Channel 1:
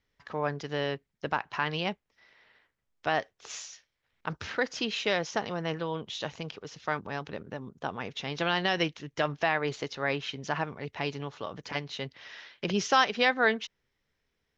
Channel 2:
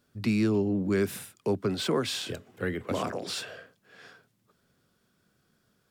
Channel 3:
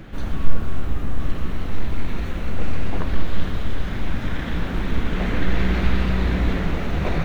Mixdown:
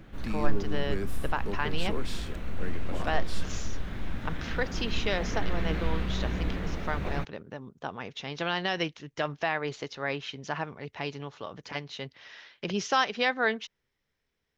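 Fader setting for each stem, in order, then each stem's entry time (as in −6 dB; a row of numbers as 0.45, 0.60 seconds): −2.0, −9.0, −10.0 decibels; 0.00, 0.00, 0.00 seconds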